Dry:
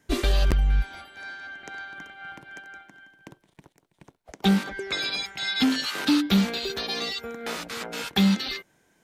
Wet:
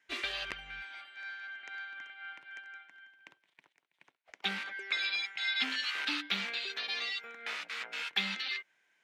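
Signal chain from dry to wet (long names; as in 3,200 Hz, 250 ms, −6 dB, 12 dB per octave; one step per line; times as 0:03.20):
resonant band-pass 2,300 Hz, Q 1.7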